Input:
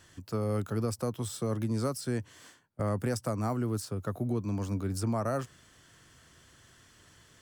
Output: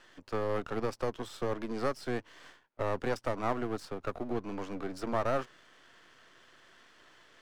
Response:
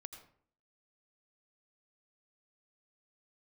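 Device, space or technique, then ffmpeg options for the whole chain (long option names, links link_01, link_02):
crystal radio: -af "highpass=370,lowpass=3300,aeval=exprs='if(lt(val(0),0),0.251*val(0),val(0))':channel_layout=same,volume=6.5dB"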